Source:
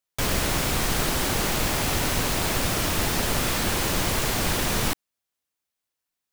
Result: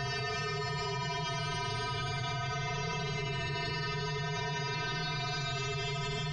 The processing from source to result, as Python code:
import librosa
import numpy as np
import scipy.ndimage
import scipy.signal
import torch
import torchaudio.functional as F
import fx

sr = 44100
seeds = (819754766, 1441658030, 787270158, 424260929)

y = scipy.signal.sosfilt(scipy.signal.butter(2, 5400.0, 'lowpass', fs=sr, output='sos'), x)
y = fx.comb_fb(y, sr, f0_hz=140.0, decay_s=0.3, harmonics='odd', damping=0.0, mix_pct=100)
y = y + 10.0 ** (-3.0 / 20.0) * np.pad(y, (int(540 * sr / 1000.0), 0))[:len(y)]
y = fx.spec_topn(y, sr, count=64)
y = 10.0 ** (-25.5 / 20.0) * np.tanh(y / 10.0 ** (-25.5 / 20.0))
y = fx.paulstretch(y, sr, seeds[0], factor=14.0, window_s=0.1, from_s=1.71)
y = fx.env_flatten(y, sr, amount_pct=100)